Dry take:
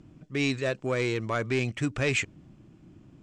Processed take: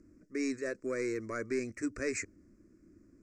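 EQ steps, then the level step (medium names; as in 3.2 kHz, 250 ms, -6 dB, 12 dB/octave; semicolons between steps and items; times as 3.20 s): Chebyshev band-stop 1.9–5.4 kHz, order 2; static phaser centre 340 Hz, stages 4; -3.0 dB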